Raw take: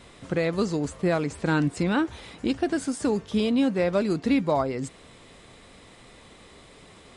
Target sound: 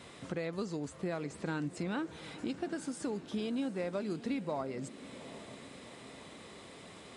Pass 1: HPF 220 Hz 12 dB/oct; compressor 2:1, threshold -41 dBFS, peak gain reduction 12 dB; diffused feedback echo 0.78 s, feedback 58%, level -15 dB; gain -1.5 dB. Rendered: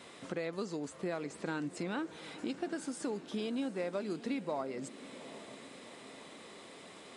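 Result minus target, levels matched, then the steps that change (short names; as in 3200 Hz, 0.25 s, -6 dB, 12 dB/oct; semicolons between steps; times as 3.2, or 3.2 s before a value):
125 Hz band -4.0 dB
change: HPF 100 Hz 12 dB/oct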